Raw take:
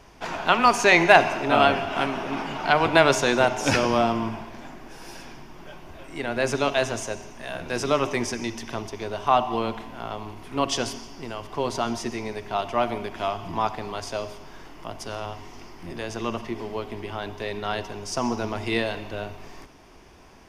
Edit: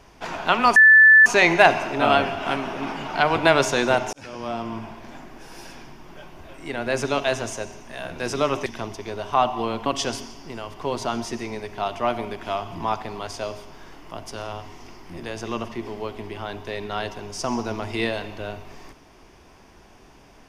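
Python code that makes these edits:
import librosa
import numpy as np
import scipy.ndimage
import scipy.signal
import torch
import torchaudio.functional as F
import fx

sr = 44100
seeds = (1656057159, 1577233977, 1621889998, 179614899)

y = fx.edit(x, sr, fx.insert_tone(at_s=0.76, length_s=0.5, hz=1750.0, db=-7.5),
    fx.fade_in_span(start_s=3.63, length_s=0.98),
    fx.cut(start_s=8.16, length_s=0.44),
    fx.cut(start_s=9.8, length_s=0.79), tone=tone)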